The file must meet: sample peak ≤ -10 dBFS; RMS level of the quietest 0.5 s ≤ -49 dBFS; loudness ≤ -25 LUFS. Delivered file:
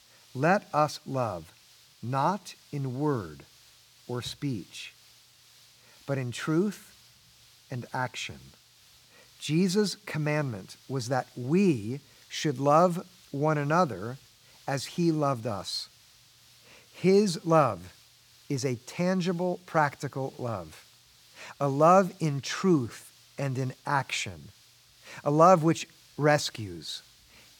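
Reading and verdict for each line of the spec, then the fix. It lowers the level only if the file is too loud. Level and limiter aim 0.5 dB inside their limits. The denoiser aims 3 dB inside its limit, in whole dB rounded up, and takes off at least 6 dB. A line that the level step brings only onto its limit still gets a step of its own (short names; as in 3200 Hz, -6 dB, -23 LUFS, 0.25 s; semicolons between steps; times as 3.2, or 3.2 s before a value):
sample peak -6.5 dBFS: fail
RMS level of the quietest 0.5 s -59 dBFS: OK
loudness -28.0 LUFS: OK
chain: limiter -10.5 dBFS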